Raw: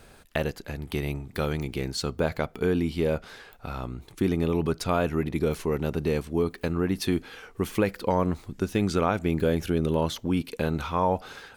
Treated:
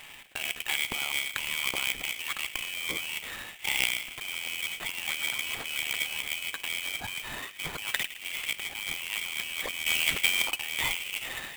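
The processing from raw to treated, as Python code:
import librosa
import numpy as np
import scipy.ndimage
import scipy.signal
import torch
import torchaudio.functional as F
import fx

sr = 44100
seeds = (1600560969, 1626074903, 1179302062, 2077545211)

y = fx.band_shelf(x, sr, hz=950.0, db=15.0, octaves=1.7, at=(7.92, 8.53))
y = fx.over_compress(y, sr, threshold_db=-33.0, ratio=-1.0)
y = scipy.signal.sosfilt(scipy.signal.butter(2, 99.0, 'highpass', fs=sr, output='sos'), y)
y = fx.echo_bbd(y, sr, ms=108, stages=1024, feedback_pct=69, wet_db=-13)
y = fx.freq_invert(y, sr, carrier_hz=3400)
y = fx.tilt_shelf(y, sr, db=-10.0, hz=740.0, at=(9.86, 10.51))
y = np.repeat(y[::8], 8)[:len(y)]
y = fx.clock_jitter(y, sr, seeds[0], jitter_ms=0.021)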